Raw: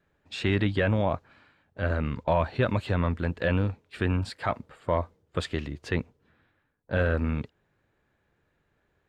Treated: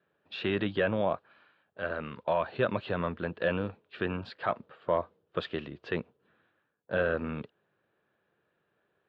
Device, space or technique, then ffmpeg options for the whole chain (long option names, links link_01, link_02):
kitchen radio: -filter_complex "[0:a]asettb=1/sr,asplit=3[link_01][link_02][link_03];[link_01]atrim=end=1.134[link_04];[link_02]atrim=start=1.13:end=2.48,asetpts=PTS-STARTPTS,afade=type=in:duration=0.004:curve=qsin,afade=type=out:start_time=1.346:duration=0.004:curve=qsin,lowshelf=frequency=500:gain=-5.5[link_05];[link_03]atrim=start=2.476[link_06];[link_04][link_05]acrossfade=duration=0.004:curve1=hsin:curve2=qsin[link_07];[link_07][link_06]acrossfade=duration=0.004:curve1=qsin:curve2=hsin,highpass=210,equalizer=frequency=270:width_type=q:width=4:gain=-7,equalizer=frequency=870:width_type=q:width=4:gain=-4,equalizer=frequency=2100:width_type=q:width=4:gain=-8,lowpass=frequency=3600:width=0.5412,lowpass=frequency=3600:width=1.3066"